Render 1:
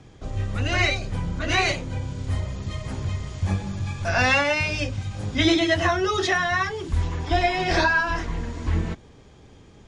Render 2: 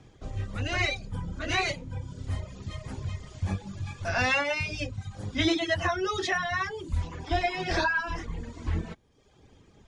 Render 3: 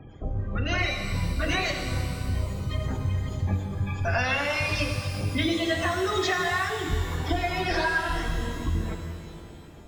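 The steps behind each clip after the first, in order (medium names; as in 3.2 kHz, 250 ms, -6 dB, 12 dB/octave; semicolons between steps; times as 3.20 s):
reverb removal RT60 0.86 s; trim -5 dB
spectral gate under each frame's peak -25 dB strong; compression, threshold -32 dBFS, peak gain reduction 11 dB; pitch-shifted reverb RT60 2.2 s, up +12 st, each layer -8 dB, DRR 4 dB; trim +7.5 dB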